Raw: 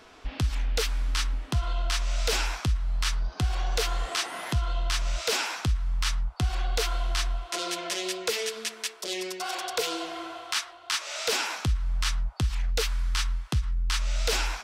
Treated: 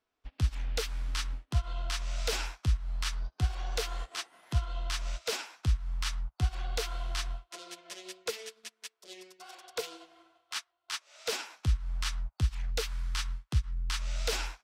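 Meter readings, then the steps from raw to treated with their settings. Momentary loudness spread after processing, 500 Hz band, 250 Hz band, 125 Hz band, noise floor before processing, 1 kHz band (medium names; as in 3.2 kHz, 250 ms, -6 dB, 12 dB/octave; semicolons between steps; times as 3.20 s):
12 LU, -7.0 dB, -8.5 dB, -3.5 dB, -48 dBFS, -9.0 dB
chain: upward expansion 2.5:1, over -43 dBFS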